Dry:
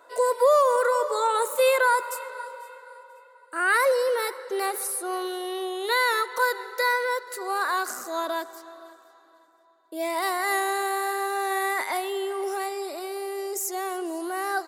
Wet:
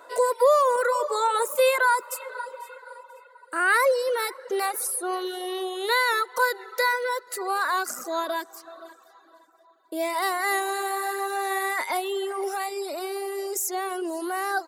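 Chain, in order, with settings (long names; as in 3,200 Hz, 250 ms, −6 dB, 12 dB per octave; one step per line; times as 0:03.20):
reverb reduction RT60 0.87 s
in parallel at −1 dB: downward compressor, threshold −37 dBFS, peak gain reduction 19.5 dB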